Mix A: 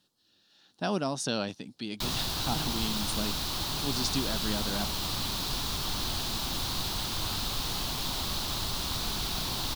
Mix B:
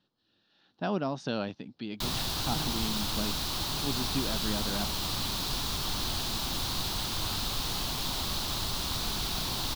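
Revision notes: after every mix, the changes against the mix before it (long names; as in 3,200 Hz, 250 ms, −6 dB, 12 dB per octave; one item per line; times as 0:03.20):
speech: add high-frequency loss of the air 230 metres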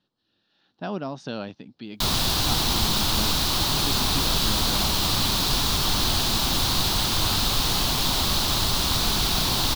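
background +9.5 dB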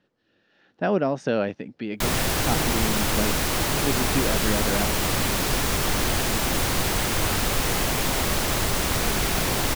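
speech +5.0 dB
master: add octave-band graphic EQ 500/1,000/2,000/4,000/8,000 Hz +8/−4/+10/−12/+4 dB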